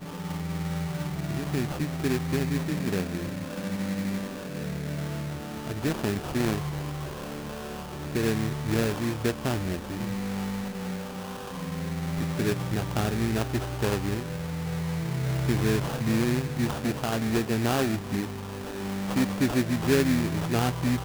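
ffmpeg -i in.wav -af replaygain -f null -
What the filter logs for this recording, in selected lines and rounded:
track_gain = +9.5 dB
track_peak = 0.167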